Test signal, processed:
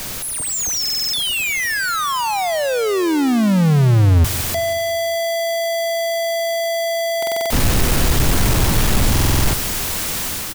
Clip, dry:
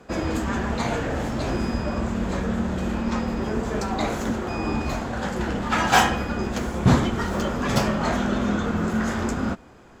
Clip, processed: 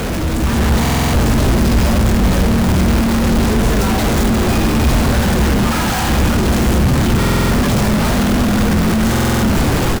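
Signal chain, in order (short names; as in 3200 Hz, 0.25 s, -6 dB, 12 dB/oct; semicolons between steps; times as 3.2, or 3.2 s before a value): infinite clipping; low shelf 240 Hz +12 dB; AGC gain up to 5 dB; on a send: feedback echo 0.183 s, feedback 51%, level -15.5 dB; on the sum: stuck buffer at 0.81/7.18/9.11, samples 2048, times 6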